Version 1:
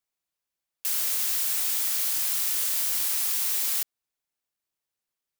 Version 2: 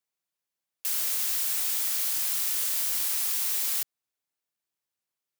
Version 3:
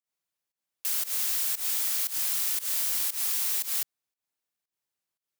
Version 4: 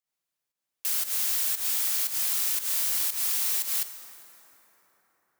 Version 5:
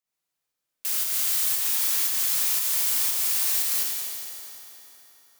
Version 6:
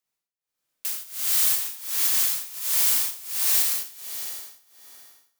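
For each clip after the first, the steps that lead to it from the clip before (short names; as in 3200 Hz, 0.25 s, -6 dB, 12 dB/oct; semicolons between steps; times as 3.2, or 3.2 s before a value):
HPF 79 Hz; gain -1.5 dB
pump 116 bpm, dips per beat 1, -20 dB, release 0.151 s
plate-style reverb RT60 4.8 s, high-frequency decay 0.45×, DRR 9 dB; gain +1 dB
multi-head echo 80 ms, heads first and third, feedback 69%, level -16 dB; Schroeder reverb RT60 2.2 s, combs from 25 ms, DRR 0.5 dB
tremolo 1.4 Hz, depth 91%; gain +4 dB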